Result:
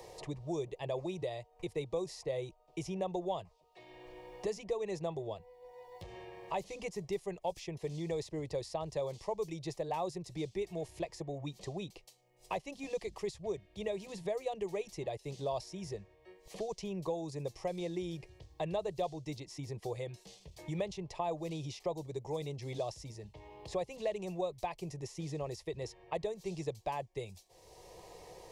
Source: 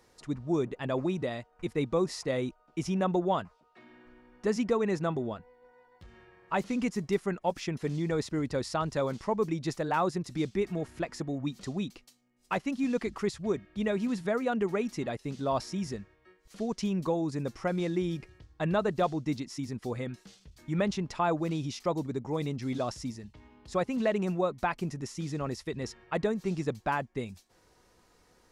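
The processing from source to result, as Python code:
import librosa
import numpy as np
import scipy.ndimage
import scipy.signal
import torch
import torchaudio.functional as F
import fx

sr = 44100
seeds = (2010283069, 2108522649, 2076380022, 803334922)

y = fx.fixed_phaser(x, sr, hz=590.0, stages=4)
y = fx.band_squash(y, sr, depth_pct=70)
y = y * librosa.db_to_amplitude(-4.0)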